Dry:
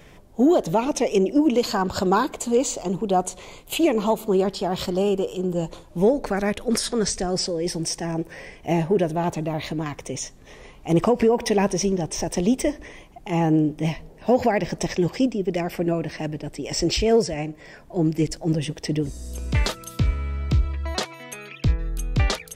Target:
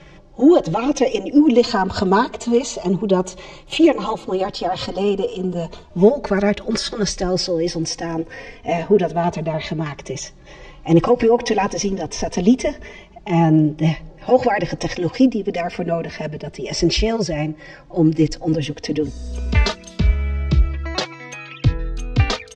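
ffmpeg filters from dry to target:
-filter_complex "[0:a]lowpass=f=6k:w=0.5412,lowpass=f=6k:w=1.3066,asplit=2[a][b];[b]adelay=3.1,afreqshift=-0.29[c];[a][c]amix=inputs=2:normalize=1,volume=7.5dB"

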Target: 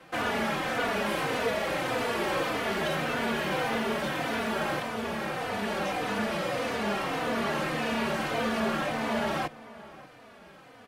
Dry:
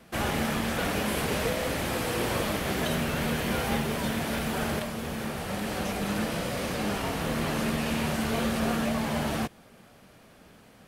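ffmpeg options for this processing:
-filter_complex "[0:a]acrossover=split=110[a][b];[a]acompressor=threshold=-46dB:ratio=6[c];[c][b]amix=inputs=2:normalize=0,asplit=2[d][e];[e]highpass=f=720:p=1,volume=17dB,asoftclip=type=tanh:threshold=-15.5dB[f];[d][f]amix=inputs=2:normalize=0,lowpass=f=1.7k:p=1,volume=-6dB,asplit=2[g][h];[h]adelay=583.1,volume=-18dB,highshelf=f=4k:g=-13.1[i];[g][i]amix=inputs=2:normalize=0,asplit=2[j][k];[k]adelay=3.3,afreqshift=-1.7[l];[j][l]amix=inputs=2:normalize=1"

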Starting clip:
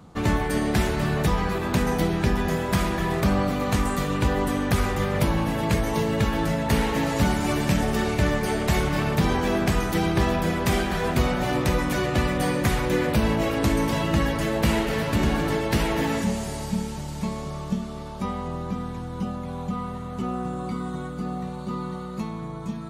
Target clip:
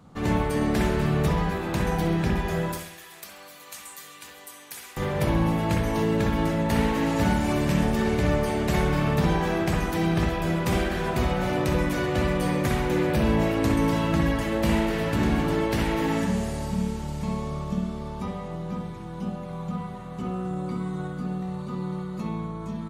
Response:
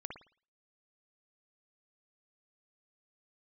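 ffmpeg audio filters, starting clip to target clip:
-filter_complex "[0:a]asettb=1/sr,asplit=3[a][b][c];[a]atrim=end=2.724[d];[b]atrim=start=2.72:end=4.97,asetpts=PTS-STARTPTS,afade=t=in:d=0.004:c=qsin,afade=t=out:st=2.246:d=0.004:c=qsin,aderivative[e];[c]atrim=start=4.966[f];[d][e]acrossfade=d=0.004:c1=hsin:c2=qsin[g];[g][f]acrossfade=d=0.004:c1=qsin:c2=hsin,aecho=1:1:66|132|198|264|330|396:0.178|0.101|0.0578|0.0329|0.0188|0.0107[h];[1:a]atrim=start_sample=2205[i];[h][i]afir=irnorm=-1:irlink=0"

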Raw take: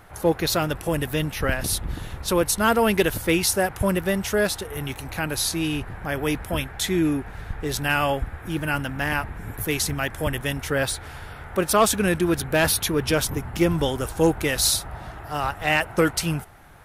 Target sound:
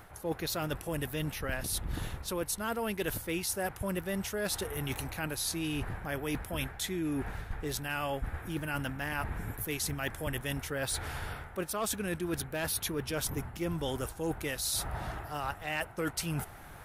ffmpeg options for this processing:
-af "highshelf=f=11k:g=5.5,areverse,acompressor=threshold=-32dB:ratio=6,areverse"

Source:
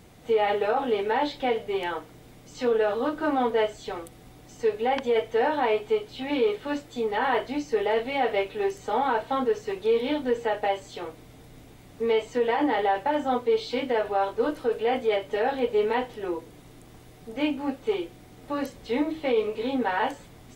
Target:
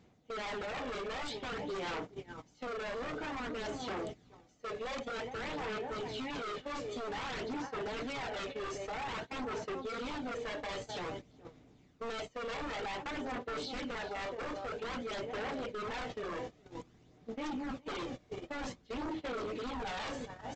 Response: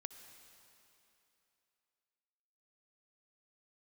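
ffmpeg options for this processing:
-filter_complex "[0:a]equalizer=f=220:w=1.6:g=3.5,areverse,acompressor=threshold=-31dB:ratio=6,areverse,highpass=f=62:p=1,asplit=2[a][b];[b]adelay=419.8,volume=-11dB,highshelf=f=4k:g=-9.45[c];[a][c]amix=inputs=2:normalize=0,aresample=16000,aeval=exprs='0.0211*(abs(mod(val(0)/0.0211+3,4)-2)-1)':c=same,aresample=44100,agate=range=-23dB:threshold=-41dB:ratio=16:detection=peak,aphaser=in_gain=1:out_gain=1:delay=1.8:decay=0.35:speed=0.52:type=sinusoidal,alimiter=level_in=16.5dB:limit=-24dB:level=0:latency=1:release=45,volume=-16.5dB,volume=7.5dB"

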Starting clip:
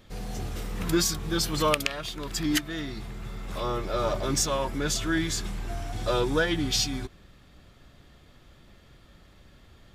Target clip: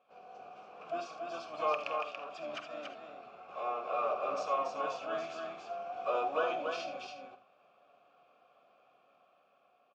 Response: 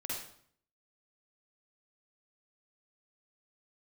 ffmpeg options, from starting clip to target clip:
-filter_complex "[0:a]dynaudnorm=f=600:g=5:m=5dB,asplit=2[a][b];[1:a]atrim=start_sample=2205,afade=t=out:st=0.14:d=0.01,atrim=end_sample=6615[c];[b][c]afir=irnorm=-1:irlink=0,volume=-5dB[d];[a][d]amix=inputs=2:normalize=0,asplit=3[e][f][g];[f]asetrate=33038,aresample=44100,atempo=1.33484,volume=-8dB[h];[g]asetrate=88200,aresample=44100,atempo=0.5,volume=-8dB[i];[e][h][i]amix=inputs=3:normalize=0,asplit=3[j][k][l];[j]bandpass=f=730:t=q:w=8,volume=0dB[m];[k]bandpass=f=1.09k:t=q:w=8,volume=-6dB[n];[l]bandpass=f=2.44k:t=q:w=8,volume=-9dB[o];[m][n][o]amix=inputs=3:normalize=0,highpass=180,equalizer=f=320:t=q:w=4:g=-4,equalizer=f=510:t=q:w=4:g=5,equalizer=f=1.4k:t=q:w=4:g=5,equalizer=f=3.8k:t=q:w=4:g=-5,lowpass=f=6.4k:w=0.5412,lowpass=f=6.4k:w=1.3066,aecho=1:1:283:0.596,volume=-6dB"

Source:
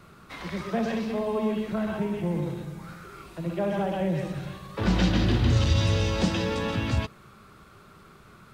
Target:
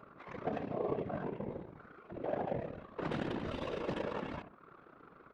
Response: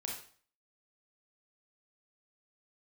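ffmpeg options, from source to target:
-filter_complex "[0:a]lowpass=f=3.2k:p=1,asplit=2[a][b];[b]adelay=108,lowpass=f=1.2k:p=1,volume=-8.5dB,asplit=2[c][d];[d]adelay=108,lowpass=f=1.2k:p=1,volume=0.33,asplit=2[e][f];[f]adelay=108,lowpass=f=1.2k:p=1,volume=0.33,asplit=2[g][h];[h]adelay=108,lowpass=f=1.2k:p=1,volume=0.33[i];[c][e][g][i]amix=inputs=4:normalize=0[j];[a][j]amix=inputs=2:normalize=0,adynamicsmooth=sensitivity=2:basefreq=1.8k,highpass=270,bandreject=f=50:t=h:w=6,bandreject=f=100:t=h:w=6,bandreject=f=150:t=h:w=6,bandreject=f=200:t=h:w=6,bandreject=f=250:t=h:w=6,bandreject=f=300:t=h:w=6,bandreject=f=350:t=h:w=6,acompressor=mode=upward:threshold=-42dB:ratio=2.5,afftfilt=real='hypot(re,im)*cos(2*PI*random(0))':imag='hypot(re,im)*sin(2*PI*random(1))':win_size=512:overlap=0.75,tremolo=f=34:d=0.667,atempo=1.6,volume=2dB"

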